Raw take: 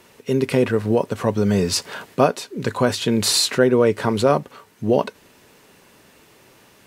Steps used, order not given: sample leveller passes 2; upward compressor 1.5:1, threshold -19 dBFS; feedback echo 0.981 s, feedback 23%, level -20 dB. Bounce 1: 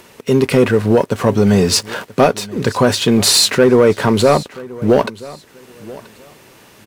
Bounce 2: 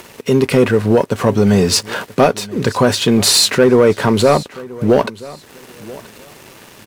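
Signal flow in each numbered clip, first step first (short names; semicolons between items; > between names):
sample leveller > upward compressor > feedback echo; upward compressor > sample leveller > feedback echo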